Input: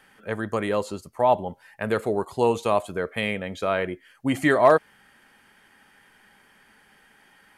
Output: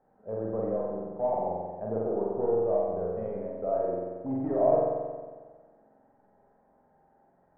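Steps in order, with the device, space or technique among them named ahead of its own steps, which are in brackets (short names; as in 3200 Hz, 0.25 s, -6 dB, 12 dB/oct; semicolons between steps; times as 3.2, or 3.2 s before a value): overdriven synthesiser ladder filter (soft clip -21.5 dBFS, distortion -7 dB; ladder low-pass 790 Hz, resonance 50%); spring tank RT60 1.5 s, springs 45 ms, chirp 20 ms, DRR -4 dB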